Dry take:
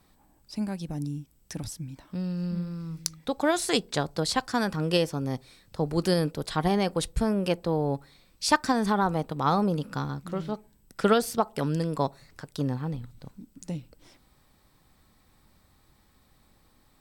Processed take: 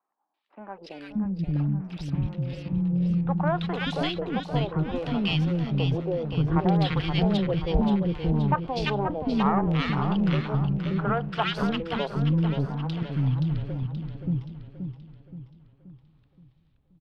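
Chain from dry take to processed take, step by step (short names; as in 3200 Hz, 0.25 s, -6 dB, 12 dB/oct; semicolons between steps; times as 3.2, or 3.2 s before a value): de-esser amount 65%; graphic EQ 250/500/2000/4000/8000 Hz -7/-12/-10/-4/-12 dB; sample leveller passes 3; LFO low-pass square 0.64 Hz 490–2900 Hz; three bands offset in time mids, highs, lows 0.34/0.58 s, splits 370/1500 Hz; warbling echo 0.526 s, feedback 46%, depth 89 cents, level -7.5 dB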